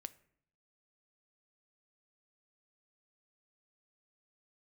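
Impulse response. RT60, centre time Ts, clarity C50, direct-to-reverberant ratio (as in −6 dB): 0.65 s, 3 ms, 19.0 dB, 13.5 dB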